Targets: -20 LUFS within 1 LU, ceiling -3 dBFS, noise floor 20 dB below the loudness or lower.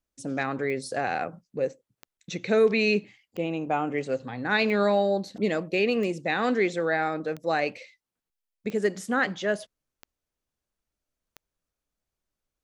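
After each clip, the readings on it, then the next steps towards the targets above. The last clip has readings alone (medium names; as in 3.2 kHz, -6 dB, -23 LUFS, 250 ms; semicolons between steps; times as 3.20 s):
clicks found 9; loudness -27.0 LUFS; peak level -11.0 dBFS; loudness target -20.0 LUFS
-> de-click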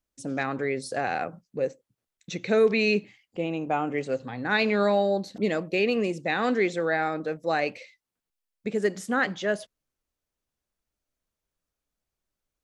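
clicks found 0; loudness -27.0 LUFS; peak level -11.0 dBFS; loudness target -20.0 LUFS
-> trim +7 dB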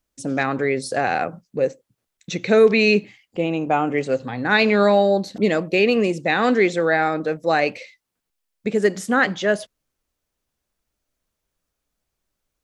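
loudness -20.0 LUFS; peak level -4.0 dBFS; noise floor -80 dBFS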